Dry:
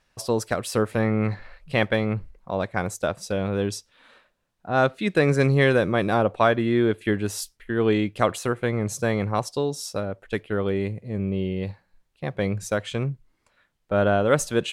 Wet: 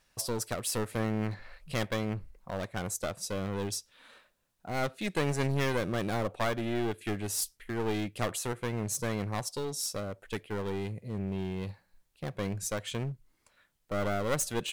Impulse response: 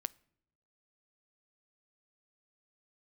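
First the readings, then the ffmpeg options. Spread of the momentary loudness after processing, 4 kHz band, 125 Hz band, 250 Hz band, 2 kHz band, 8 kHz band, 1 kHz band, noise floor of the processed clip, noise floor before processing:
8 LU, -4.5 dB, -8.5 dB, -9.5 dB, -10.5 dB, 0.0 dB, -9.5 dB, -73 dBFS, -71 dBFS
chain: -filter_complex "[0:a]asplit=2[a][b];[b]acompressor=threshold=-34dB:ratio=6,volume=-1dB[c];[a][c]amix=inputs=2:normalize=0,aeval=exprs='clip(val(0),-1,0.0562)':c=same,crystalizer=i=1.5:c=0,volume=-9dB"

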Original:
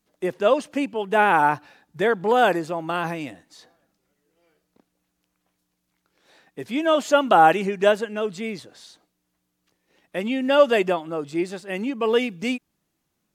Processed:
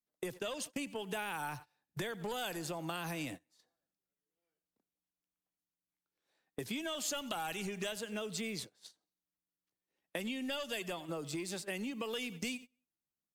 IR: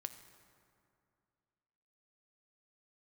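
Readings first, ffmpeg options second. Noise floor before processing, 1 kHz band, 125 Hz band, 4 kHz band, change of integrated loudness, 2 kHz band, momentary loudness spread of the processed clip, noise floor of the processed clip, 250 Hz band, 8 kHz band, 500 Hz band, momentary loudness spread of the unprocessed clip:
-76 dBFS, -23.0 dB, -10.5 dB, -9.0 dB, -18.0 dB, -16.0 dB, 7 LU, under -85 dBFS, -15.0 dB, -0.5 dB, -21.0 dB, 14 LU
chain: -filter_complex "[0:a]acrossover=split=100|780|4100[a][b][c][d];[b]asoftclip=type=tanh:threshold=-18dB[e];[a][e][c][d]amix=inputs=4:normalize=0,aecho=1:1:92|184|276:0.0794|0.0342|0.0147,acrossover=split=130|3000[f][g][h];[g]acompressor=threshold=-41dB:ratio=2.5[i];[f][i][h]amix=inputs=3:normalize=0,agate=range=-29dB:threshold=-43dB:ratio=16:detection=peak,acompressor=threshold=-41dB:ratio=6,highshelf=f=9.3k:g=9.5,volume=4dB"

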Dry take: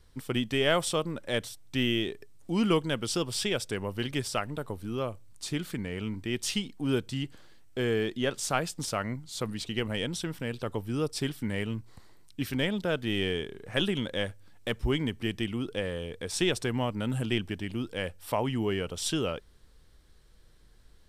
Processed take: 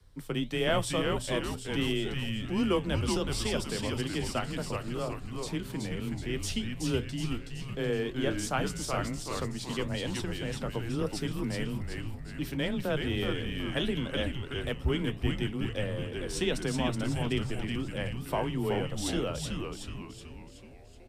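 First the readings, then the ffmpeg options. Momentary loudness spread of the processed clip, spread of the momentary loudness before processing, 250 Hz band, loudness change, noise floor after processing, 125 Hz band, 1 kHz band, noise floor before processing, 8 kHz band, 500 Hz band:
6 LU, 8 LU, -1.0 dB, -1.0 dB, -46 dBFS, +1.0 dB, -0.5 dB, -57 dBFS, -2.5 dB, -1.5 dB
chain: -filter_complex "[0:a]lowshelf=f=120:g=6,acrossover=split=110|1000[a][b][c];[b]crystalizer=i=9.5:c=0[d];[a][d][c]amix=inputs=3:normalize=0,afreqshift=18,flanger=delay=7.5:depth=5.7:regen=-71:speed=1.5:shape=sinusoidal,asplit=8[e][f][g][h][i][j][k][l];[f]adelay=374,afreqshift=-140,volume=-3.5dB[m];[g]adelay=748,afreqshift=-280,volume=-9.3dB[n];[h]adelay=1122,afreqshift=-420,volume=-15.2dB[o];[i]adelay=1496,afreqshift=-560,volume=-21dB[p];[j]adelay=1870,afreqshift=-700,volume=-26.9dB[q];[k]adelay=2244,afreqshift=-840,volume=-32.7dB[r];[l]adelay=2618,afreqshift=-980,volume=-38.6dB[s];[e][m][n][o][p][q][r][s]amix=inputs=8:normalize=0"

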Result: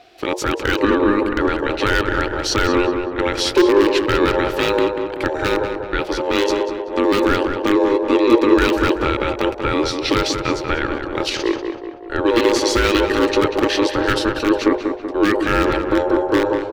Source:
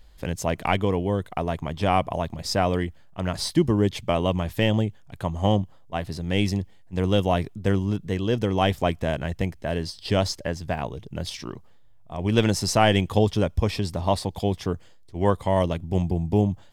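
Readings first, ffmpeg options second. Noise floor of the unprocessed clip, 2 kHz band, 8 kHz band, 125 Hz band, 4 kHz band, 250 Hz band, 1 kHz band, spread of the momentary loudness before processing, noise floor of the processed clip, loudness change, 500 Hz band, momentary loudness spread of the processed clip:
-48 dBFS, +12.0 dB, +6.0 dB, -5.5 dB, +7.5 dB, +8.0 dB, +6.5 dB, 10 LU, -30 dBFS, +7.0 dB, +8.5 dB, 7 LU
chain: -filter_complex "[0:a]asplit=2[a][b];[b]aeval=exprs='(mod(4.47*val(0)+1,2)-1)/4.47':c=same,volume=-4dB[c];[a][c]amix=inputs=2:normalize=0,bandreject=f=50:t=h:w=6,bandreject=f=100:t=h:w=6,bandreject=f=150:t=h:w=6,bandreject=f=200:t=h:w=6,bandreject=f=250:t=h:w=6,bandreject=f=300:t=h:w=6,bandreject=f=350:t=h:w=6,alimiter=limit=-15.5dB:level=0:latency=1:release=38,aeval=exprs='val(0)*sin(2*PI*710*n/s)':c=same,firequalizer=gain_entry='entry(110,0);entry(170,-10);entry(340,14);entry(680,-11);entry(1600,4);entry(3000,4);entry(8800,-9)':delay=0.05:min_phase=1,asplit=2[d][e];[e]adelay=190,lowpass=f=2.3k:p=1,volume=-6dB,asplit=2[f][g];[g]adelay=190,lowpass=f=2.3k:p=1,volume=0.55,asplit=2[h][i];[i]adelay=190,lowpass=f=2.3k:p=1,volume=0.55,asplit=2[j][k];[k]adelay=190,lowpass=f=2.3k:p=1,volume=0.55,asplit=2[l][m];[m]adelay=190,lowpass=f=2.3k:p=1,volume=0.55,asplit=2[n][o];[o]adelay=190,lowpass=f=2.3k:p=1,volume=0.55,asplit=2[p][q];[q]adelay=190,lowpass=f=2.3k:p=1,volume=0.55[r];[f][h][j][l][n][p][r]amix=inputs=7:normalize=0[s];[d][s]amix=inputs=2:normalize=0,volume=8.5dB"

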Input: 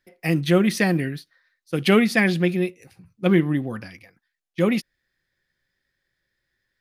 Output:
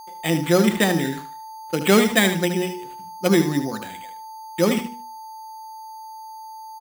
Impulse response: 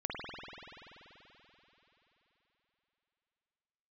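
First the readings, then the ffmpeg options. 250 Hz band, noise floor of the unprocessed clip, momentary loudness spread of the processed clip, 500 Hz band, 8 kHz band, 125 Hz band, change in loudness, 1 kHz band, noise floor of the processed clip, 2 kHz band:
0.0 dB, -79 dBFS, 21 LU, +2.0 dB, +9.5 dB, -2.0 dB, +1.0 dB, +6.0 dB, -38 dBFS, +0.5 dB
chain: -filter_complex "[0:a]agate=range=-16dB:threshold=-52dB:ratio=16:detection=peak,highpass=200,bandreject=f=60:t=h:w=6,bandreject=f=120:t=h:w=6,bandreject=f=180:t=h:w=6,bandreject=f=240:t=h:w=6,bandreject=f=300:t=h:w=6,bandreject=f=360:t=h:w=6,bandreject=f=420:t=h:w=6,bandreject=f=480:t=h:w=6,acrossover=split=3000[a][b];[b]acompressor=threshold=-47dB:ratio=6[c];[a][c]amix=inputs=2:normalize=0,aeval=exprs='val(0)+0.00891*sin(2*PI*880*n/s)':c=same,acrusher=samples=8:mix=1:aa=0.000001,aecho=1:1:75|150|225:0.335|0.077|0.0177,volume=3dB"

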